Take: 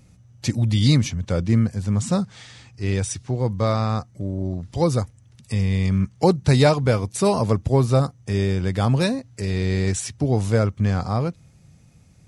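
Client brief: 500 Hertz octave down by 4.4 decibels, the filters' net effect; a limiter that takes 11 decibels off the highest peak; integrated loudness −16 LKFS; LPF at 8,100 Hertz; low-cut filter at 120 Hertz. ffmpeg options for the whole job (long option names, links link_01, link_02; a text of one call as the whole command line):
ffmpeg -i in.wav -af "highpass=120,lowpass=8100,equalizer=frequency=500:width_type=o:gain=-5.5,volume=11.5dB,alimiter=limit=-4dB:level=0:latency=1" out.wav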